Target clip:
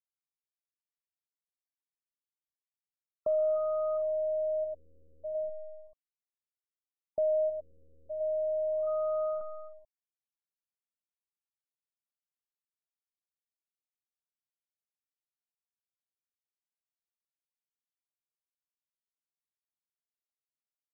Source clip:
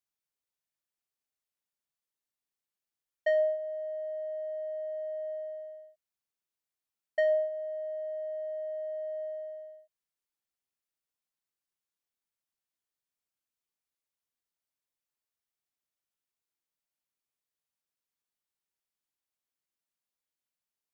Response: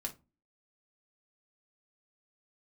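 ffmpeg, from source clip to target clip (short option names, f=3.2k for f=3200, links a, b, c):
-af "asoftclip=type=hard:threshold=-30.5dB,acrusher=bits=7:dc=4:mix=0:aa=0.000001,afftfilt=real='re*lt(b*sr/1024,560*pow(1500/560,0.5+0.5*sin(2*PI*0.35*pts/sr)))':imag='im*lt(b*sr/1024,560*pow(1500/560,0.5+0.5*sin(2*PI*0.35*pts/sr)))':win_size=1024:overlap=0.75,volume=4.5dB"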